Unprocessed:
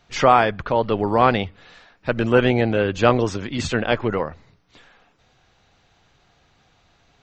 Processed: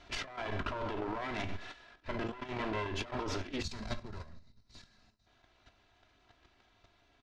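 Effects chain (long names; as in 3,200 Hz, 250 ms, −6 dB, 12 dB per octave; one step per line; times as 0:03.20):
lower of the sound and its delayed copy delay 3 ms
low-pass filter 4,800 Hz 12 dB per octave
four-comb reverb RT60 0.4 s, combs from 30 ms, DRR 11.5 dB
sample-and-hold tremolo 3.5 Hz, depth 80%
output level in coarse steps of 11 dB
gain on a spectral selection 0:03.63–0:05.26, 250–3,700 Hz −13 dB
compressor whose output falls as the input rises −40 dBFS, ratio −1
double-tracking delay 19 ms −13.5 dB
level +1 dB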